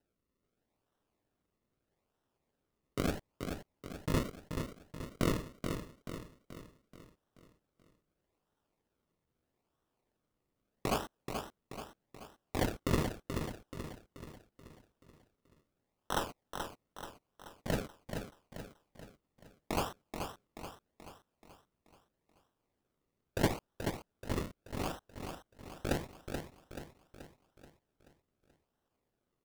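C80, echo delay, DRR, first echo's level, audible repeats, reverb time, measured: no reverb audible, 431 ms, no reverb audible, −6.5 dB, 5, no reverb audible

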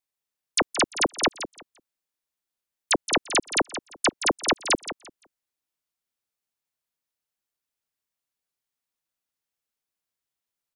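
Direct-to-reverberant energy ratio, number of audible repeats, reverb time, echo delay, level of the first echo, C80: no reverb audible, 2, no reverb audible, 172 ms, −11.5 dB, no reverb audible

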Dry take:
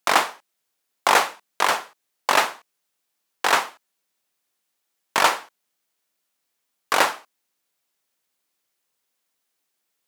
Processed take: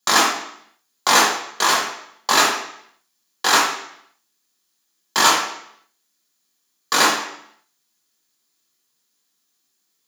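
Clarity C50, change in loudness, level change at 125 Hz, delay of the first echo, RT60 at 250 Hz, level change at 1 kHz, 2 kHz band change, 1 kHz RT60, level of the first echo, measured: 3.5 dB, +4.0 dB, +5.5 dB, no echo audible, 0.75 s, +2.5 dB, +3.5 dB, 0.70 s, no echo audible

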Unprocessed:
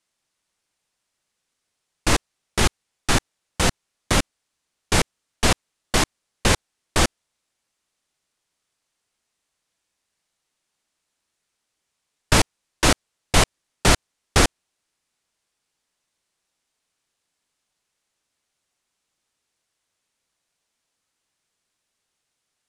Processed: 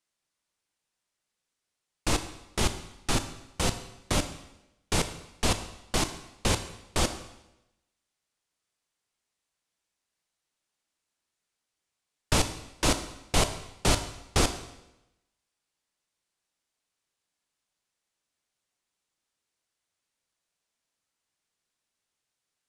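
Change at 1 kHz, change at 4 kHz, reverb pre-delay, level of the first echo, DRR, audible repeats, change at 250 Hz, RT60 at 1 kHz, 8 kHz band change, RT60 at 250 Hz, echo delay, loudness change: −7.5 dB, −7.0 dB, 18 ms, no echo audible, 9.0 dB, no echo audible, −6.5 dB, 0.90 s, −6.5 dB, 0.95 s, no echo audible, −7.5 dB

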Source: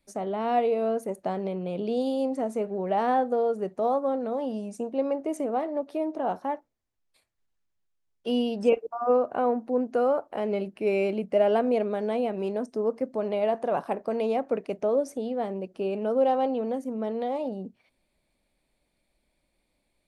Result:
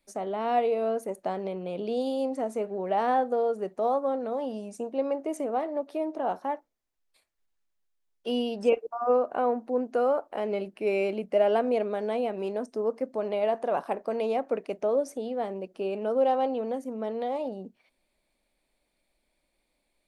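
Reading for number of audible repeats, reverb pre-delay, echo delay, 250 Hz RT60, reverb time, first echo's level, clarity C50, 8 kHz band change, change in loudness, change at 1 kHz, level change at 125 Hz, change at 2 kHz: no echo audible, no reverb audible, no echo audible, no reverb audible, no reverb audible, no echo audible, no reverb audible, can't be measured, −1.5 dB, −0.5 dB, can't be measured, 0.0 dB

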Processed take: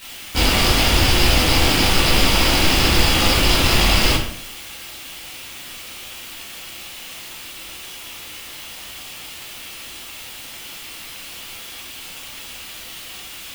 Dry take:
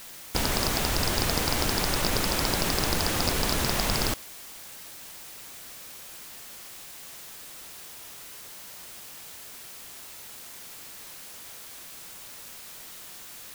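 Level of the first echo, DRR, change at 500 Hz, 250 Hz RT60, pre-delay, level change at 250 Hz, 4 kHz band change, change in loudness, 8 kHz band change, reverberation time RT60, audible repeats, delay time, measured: no echo audible, −9.5 dB, +8.0 dB, 0.70 s, 10 ms, +10.0 dB, +12.0 dB, +10.0 dB, +6.5 dB, 0.65 s, no echo audible, no echo audible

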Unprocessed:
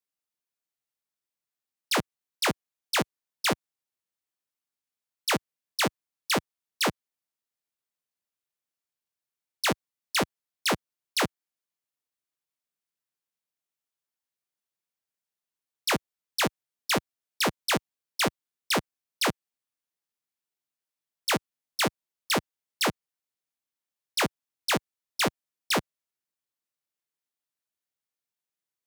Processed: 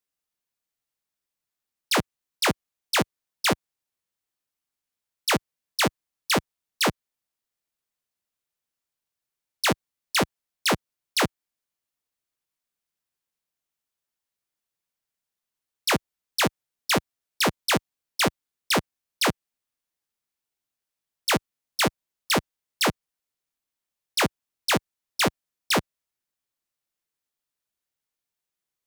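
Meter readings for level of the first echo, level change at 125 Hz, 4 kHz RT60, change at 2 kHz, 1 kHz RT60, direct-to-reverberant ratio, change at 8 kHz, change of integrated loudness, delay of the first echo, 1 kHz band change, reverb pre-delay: no echo audible, +4.5 dB, no reverb audible, +3.0 dB, no reverb audible, no reverb audible, +3.0 dB, +3.0 dB, no echo audible, +3.0 dB, no reverb audible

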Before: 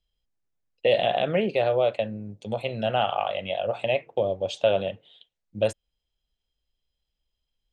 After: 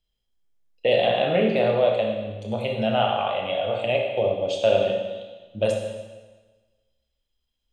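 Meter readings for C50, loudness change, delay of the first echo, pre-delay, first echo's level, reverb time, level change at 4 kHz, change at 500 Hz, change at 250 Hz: 2.5 dB, +2.5 dB, no echo audible, 18 ms, no echo audible, 1.3 s, +2.5 dB, +3.0 dB, +4.5 dB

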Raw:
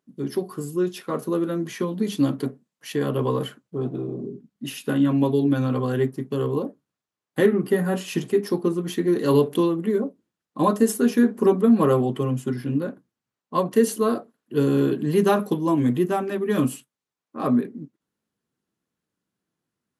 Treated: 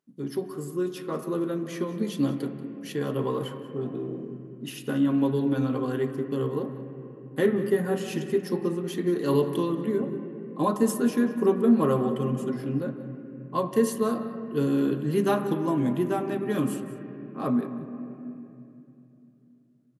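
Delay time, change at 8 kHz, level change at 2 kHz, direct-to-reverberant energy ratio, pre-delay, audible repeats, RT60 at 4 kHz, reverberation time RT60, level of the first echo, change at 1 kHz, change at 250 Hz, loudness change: 185 ms, −5.0 dB, −4.5 dB, 7.5 dB, 13 ms, 1, 2.3 s, 2.9 s, −17.0 dB, −4.0 dB, −3.5 dB, −4.0 dB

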